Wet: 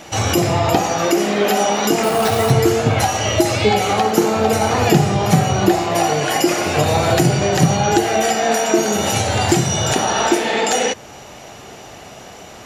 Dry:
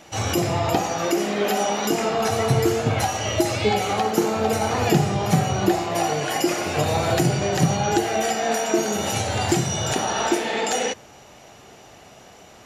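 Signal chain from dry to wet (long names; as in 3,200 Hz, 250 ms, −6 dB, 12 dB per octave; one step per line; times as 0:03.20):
in parallel at −1.5 dB: downward compressor, threshold −31 dBFS, peak gain reduction 17 dB
0:02.03–0:02.50: on the sum: sample-rate reduction 9,600 Hz, jitter 0%
level +4 dB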